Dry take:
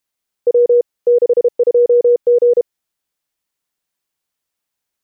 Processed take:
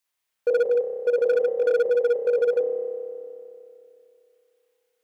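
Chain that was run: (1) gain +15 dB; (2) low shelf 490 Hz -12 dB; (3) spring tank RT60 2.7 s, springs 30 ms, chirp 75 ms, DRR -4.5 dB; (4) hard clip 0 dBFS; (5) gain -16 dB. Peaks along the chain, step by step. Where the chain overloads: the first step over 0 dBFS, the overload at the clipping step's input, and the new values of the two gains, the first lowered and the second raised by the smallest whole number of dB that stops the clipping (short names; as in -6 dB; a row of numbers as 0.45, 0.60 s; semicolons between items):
+8.0, +2.0, +7.0, 0.0, -16.0 dBFS; step 1, 7.0 dB; step 1 +8 dB, step 5 -9 dB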